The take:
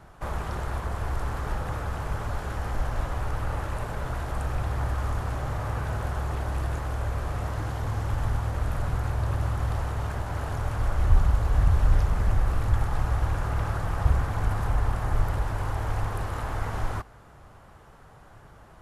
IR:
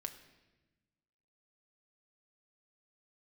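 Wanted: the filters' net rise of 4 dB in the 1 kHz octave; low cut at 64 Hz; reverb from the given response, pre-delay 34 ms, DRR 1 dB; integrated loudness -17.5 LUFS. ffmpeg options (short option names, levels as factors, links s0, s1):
-filter_complex "[0:a]highpass=64,equalizer=f=1000:t=o:g=5,asplit=2[s0][s1];[1:a]atrim=start_sample=2205,adelay=34[s2];[s1][s2]afir=irnorm=-1:irlink=0,volume=1.19[s3];[s0][s3]amix=inputs=2:normalize=0,volume=3.35"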